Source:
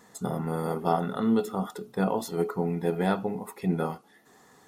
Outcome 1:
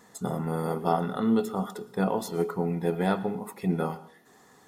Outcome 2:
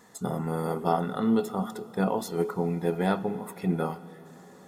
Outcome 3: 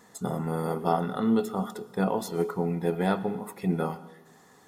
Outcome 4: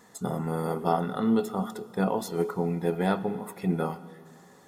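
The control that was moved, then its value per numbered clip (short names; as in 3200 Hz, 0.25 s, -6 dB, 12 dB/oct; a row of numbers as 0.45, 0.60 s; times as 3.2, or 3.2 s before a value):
plate-style reverb, RT60: 0.52, 5.3, 1.1, 2.4 s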